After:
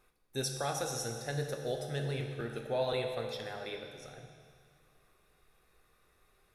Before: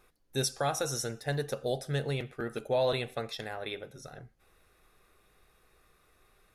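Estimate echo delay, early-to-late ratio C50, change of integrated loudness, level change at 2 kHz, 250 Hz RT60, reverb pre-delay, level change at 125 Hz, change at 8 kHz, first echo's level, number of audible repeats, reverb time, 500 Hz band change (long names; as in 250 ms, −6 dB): no echo audible, 5.0 dB, −3.5 dB, −3.5 dB, 2.1 s, 14 ms, −3.0 dB, −3.5 dB, no echo audible, no echo audible, 2.1 s, −3.5 dB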